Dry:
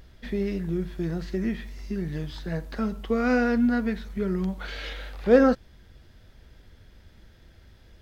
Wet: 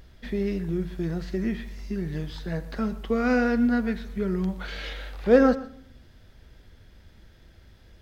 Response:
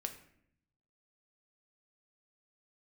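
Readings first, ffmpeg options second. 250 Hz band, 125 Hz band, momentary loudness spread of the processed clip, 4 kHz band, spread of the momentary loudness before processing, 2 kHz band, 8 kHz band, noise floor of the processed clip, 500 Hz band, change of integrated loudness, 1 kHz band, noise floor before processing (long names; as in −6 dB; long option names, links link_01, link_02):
0.0 dB, +0.5 dB, 14 LU, 0.0 dB, 14 LU, 0.0 dB, can't be measured, −53 dBFS, 0.0 dB, 0.0 dB, 0.0 dB, −54 dBFS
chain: -filter_complex "[0:a]asplit=2[link_01][link_02];[1:a]atrim=start_sample=2205,adelay=120[link_03];[link_02][link_03]afir=irnorm=-1:irlink=0,volume=-15dB[link_04];[link_01][link_04]amix=inputs=2:normalize=0"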